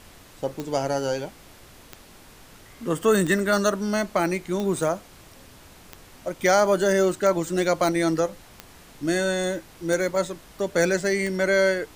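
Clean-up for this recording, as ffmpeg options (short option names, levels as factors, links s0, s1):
-af "adeclick=t=4,afftdn=nr=20:nf=-49"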